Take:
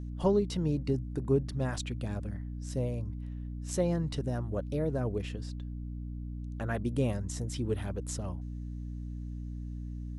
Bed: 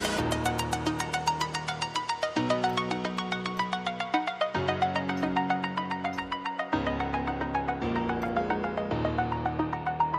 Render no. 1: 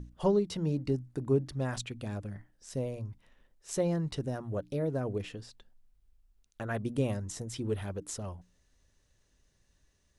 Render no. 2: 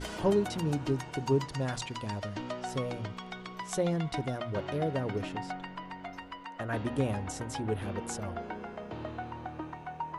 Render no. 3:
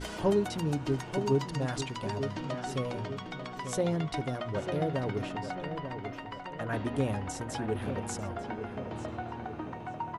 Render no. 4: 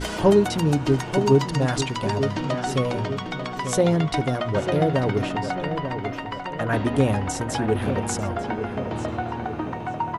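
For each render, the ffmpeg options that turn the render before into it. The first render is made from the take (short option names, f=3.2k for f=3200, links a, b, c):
-af "bandreject=f=60:t=h:w=6,bandreject=f=120:t=h:w=6,bandreject=f=180:t=h:w=6,bandreject=f=240:t=h:w=6,bandreject=f=300:t=h:w=6"
-filter_complex "[1:a]volume=-11dB[a];[0:a][a]amix=inputs=2:normalize=0"
-filter_complex "[0:a]asplit=2[a][b];[b]adelay=893,lowpass=f=2.5k:p=1,volume=-8dB,asplit=2[c][d];[d]adelay=893,lowpass=f=2.5k:p=1,volume=0.51,asplit=2[e][f];[f]adelay=893,lowpass=f=2.5k:p=1,volume=0.51,asplit=2[g][h];[h]adelay=893,lowpass=f=2.5k:p=1,volume=0.51,asplit=2[i][j];[j]adelay=893,lowpass=f=2.5k:p=1,volume=0.51,asplit=2[k][l];[l]adelay=893,lowpass=f=2.5k:p=1,volume=0.51[m];[a][c][e][g][i][k][m]amix=inputs=7:normalize=0"
-af "volume=10dB"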